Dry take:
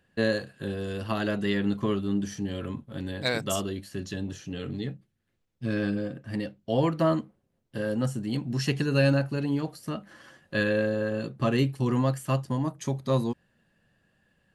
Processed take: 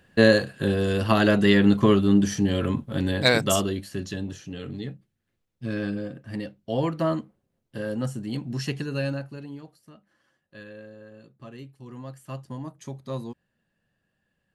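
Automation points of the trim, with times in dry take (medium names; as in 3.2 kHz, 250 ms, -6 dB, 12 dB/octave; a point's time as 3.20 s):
3.18 s +9 dB
4.55 s -1 dB
8.54 s -1 dB
9.34 s -9 dB
9.97 s -18 dB
11.79 s -18 dB
12.50 s -7.5 dB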